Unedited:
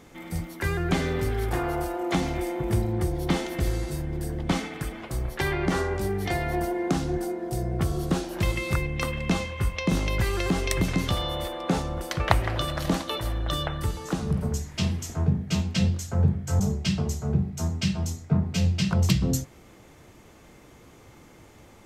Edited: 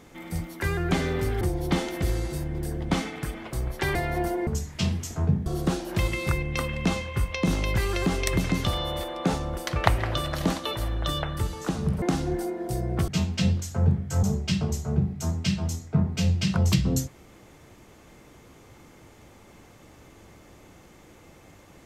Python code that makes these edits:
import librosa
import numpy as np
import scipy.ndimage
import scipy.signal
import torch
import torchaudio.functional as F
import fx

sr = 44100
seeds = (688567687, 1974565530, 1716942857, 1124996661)

y = fx.edit(x, sr, fx.cut(start_s=1.41, length_s=1.58),
    fx.cut(start_s=5.53, length_s=0.79),
    fx.swap(start_s=6.84, length_s=1.06, other_s=14.46, other_length_s=0.99), tone=tone)